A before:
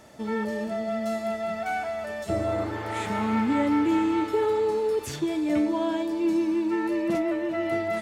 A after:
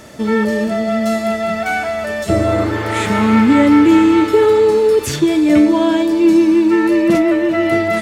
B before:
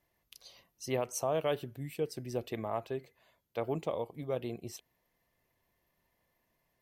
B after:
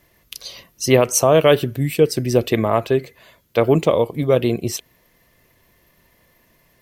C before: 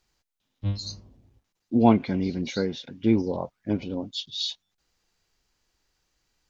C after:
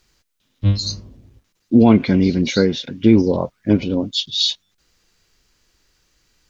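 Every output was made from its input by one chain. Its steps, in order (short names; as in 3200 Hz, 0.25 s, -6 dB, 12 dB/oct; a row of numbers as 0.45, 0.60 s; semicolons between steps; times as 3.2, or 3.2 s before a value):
bell 800 Hz -6.5 dB 0.6 oct; maximiser +12 dB; normalise peaks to -1.5 dBFS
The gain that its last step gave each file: +2.0, +8.5, -0.5 dB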